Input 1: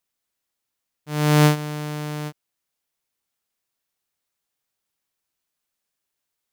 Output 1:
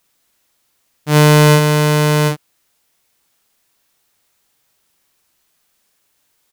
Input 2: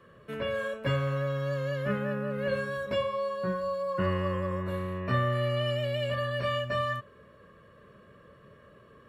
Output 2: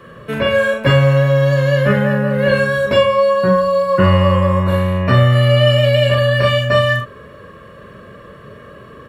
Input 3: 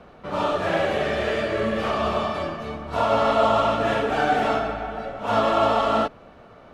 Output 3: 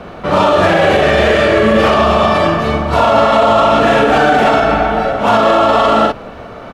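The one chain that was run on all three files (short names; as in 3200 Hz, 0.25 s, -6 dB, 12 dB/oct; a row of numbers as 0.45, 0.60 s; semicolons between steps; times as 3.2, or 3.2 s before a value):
doubler 42 ms -4.5 dB; maximiser +17 dB; gain -1 dB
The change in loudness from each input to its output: +9.5, +17.0, +12.0 LU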